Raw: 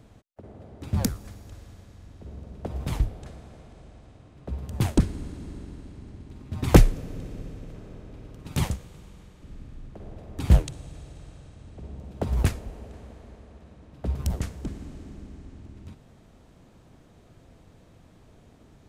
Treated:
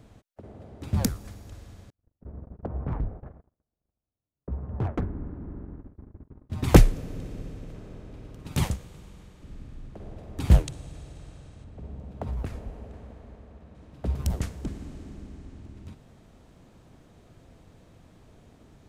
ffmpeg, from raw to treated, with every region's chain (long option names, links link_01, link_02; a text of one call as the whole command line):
ffmpeg -i in.wav -filter_complex "[0:a]asettb=1/sr,asplit=3[link_01][link_02][link_03];[link_01]atrim=end=1.904[link_04];[link_02]atrim=start=1.9:end=6.5,asetpts=PTS-STARTPTS,afade=type=in:duration=0.004:curve=qsin,afade=type=out:start_time=4.596:duration=0.004:curve=qsin,lowpass=frequency=1500:width=0.5412,lowpass=frequency=1500:width=1.3066,volume=23.5dB,asoftclip=hard,volume=-23.5dB,agate=range=-41dB:threshold=-42dB:ratio=16:release=100:detection=peak[link_05];[link_03]atrim=start=6.496[link_06];[link_04][link_05]acrossfade=duration=0.004:curve1=hsin:curve2=qsin[link_07];[link_07][link_06]acrossfade=duration=0.004:curve1=qsin:curve2=hsin,asettb=1/sr,asplit=3[link_08][link_09][link_10];[link_08]atrim=end=11.644[link_11];[link_09]atrim=start=11.64:end=13.75,asetpts=PTS-STARTPTS,afade=type=in:duration=0.004:curve=qsin,afade=type=out:start_time=2.106:duration=0.004:curve=qsin,highshelf=frequency=3100:gain=-9.5,acompressor=threshold=-27dB:ratio=10:attack=3.2:release=140:knee=1:detection=peak,bandreject=frequency=350:width=9[link_12];[link_10]atrim=start=13.746[link_13];[link_11][link_12]acrossfade=duration=0.004:curve1=hsin:curve2=qsin[link_14];[link_14][link_13]acrossfade=duration=0.004:curve1=qsin:curve2=hsin" out.wav